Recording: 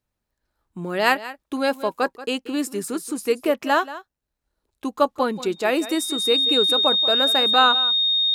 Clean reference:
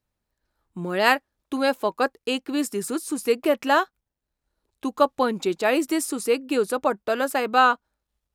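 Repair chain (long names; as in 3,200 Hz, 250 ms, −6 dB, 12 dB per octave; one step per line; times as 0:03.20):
notch filter 3,700 Hz, Q 30
echo removal 182 ms −15.5 dB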